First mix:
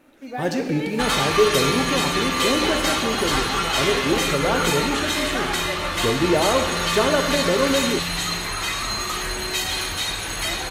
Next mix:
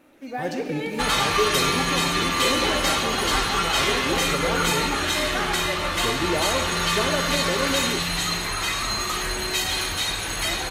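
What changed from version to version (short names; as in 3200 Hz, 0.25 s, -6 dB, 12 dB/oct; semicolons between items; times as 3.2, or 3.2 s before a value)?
speech -6.5 dB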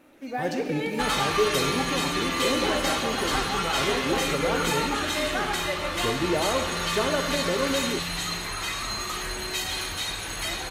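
second sound -5.0 dB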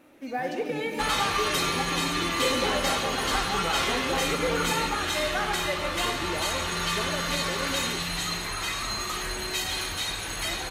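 speech -8.5 dB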